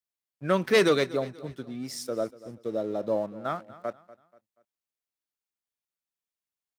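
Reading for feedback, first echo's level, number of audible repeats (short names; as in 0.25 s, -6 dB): 38%, -18.5 dB, 2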